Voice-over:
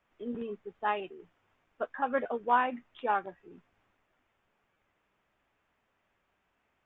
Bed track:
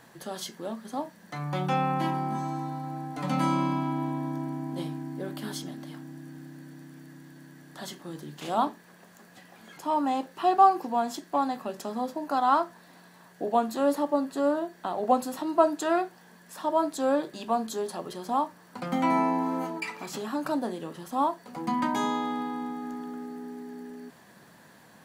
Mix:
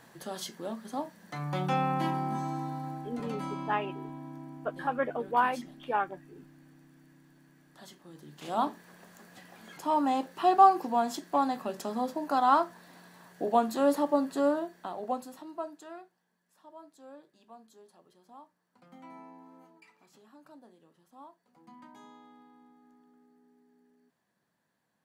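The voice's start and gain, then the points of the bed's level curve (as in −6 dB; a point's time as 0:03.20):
2.85 s, 0.0 dB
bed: 0:02.88 −2 dB
0:03.37 −11.5 dB
0:08.10 −11.5 dB
0:08.76 −0.5 dB
0:14.42 −0.5 dB
0:16.28 −25 dB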